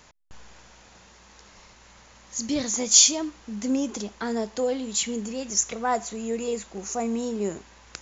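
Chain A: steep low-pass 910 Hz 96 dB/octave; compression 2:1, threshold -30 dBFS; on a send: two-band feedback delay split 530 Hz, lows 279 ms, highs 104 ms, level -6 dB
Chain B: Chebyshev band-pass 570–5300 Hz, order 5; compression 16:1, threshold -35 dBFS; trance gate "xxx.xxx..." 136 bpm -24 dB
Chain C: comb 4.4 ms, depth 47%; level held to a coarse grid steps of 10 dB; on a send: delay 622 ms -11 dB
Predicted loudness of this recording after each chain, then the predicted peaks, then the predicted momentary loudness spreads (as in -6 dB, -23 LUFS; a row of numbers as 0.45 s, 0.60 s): -32.5 LUFS, -43.0 LUFS, -28.5 LUFS; -19.0 dBFS, -19.0 dBFS, -8.5 dBFS; 4 LU, 19 LU, 12 LU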